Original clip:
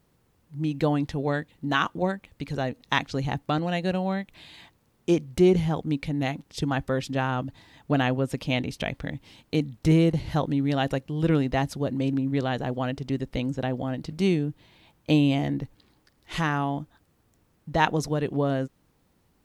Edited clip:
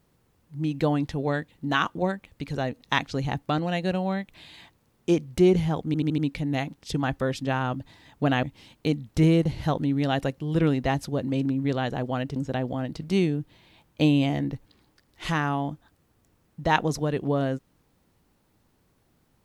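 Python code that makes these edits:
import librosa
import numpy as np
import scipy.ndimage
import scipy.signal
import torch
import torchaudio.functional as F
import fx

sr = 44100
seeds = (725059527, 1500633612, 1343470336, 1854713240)

y = fx.edit(x, sr, fx.stutter(start_s=5.86, slice_s=0.08, count=5),
    fx.cut(start_s=8.11, length_s=1.0),
    fx.cut(start_s=13.04, length_s=0.41), tone=tone)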